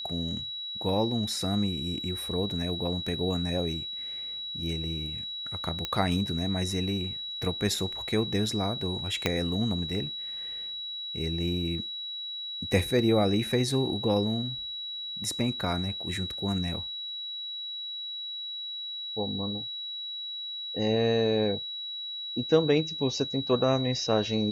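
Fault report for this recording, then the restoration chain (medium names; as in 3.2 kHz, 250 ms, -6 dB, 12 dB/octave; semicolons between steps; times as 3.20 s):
whine 3.9 kHz -34 dBFS
5.85 s: pop -15 dBFS
9.26 s: pop -10 dBFS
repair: de-click; band-stop 3.9 kHz, Q 30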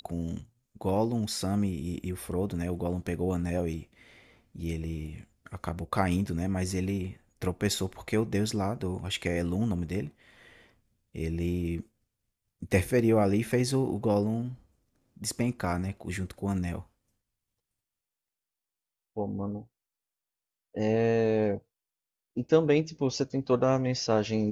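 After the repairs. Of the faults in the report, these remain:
9.26 s: pop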